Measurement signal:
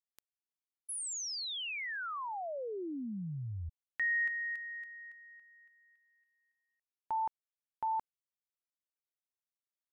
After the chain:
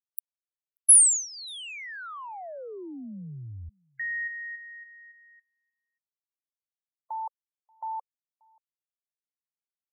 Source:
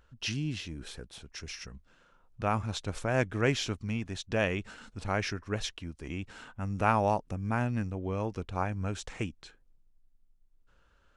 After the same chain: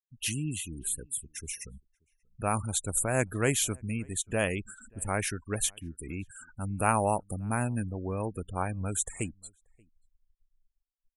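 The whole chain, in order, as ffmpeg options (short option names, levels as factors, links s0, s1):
-filter_complex "[0:a]aexciter=amount=15.8:drive=8:freq=8000,afftfilt=real='re*gte(hypot(re,im),0.0126)':imag='im*gte(hypot(re,im),0.0126)':win_size=1024:overlap=0.75,asplit=2[s0][s1];[s1]adelay=583.1,volume=0.0355,highshelf=f=4000:g=-13.1[s2];[s0][s2]amix=inputs=2:normalize=0"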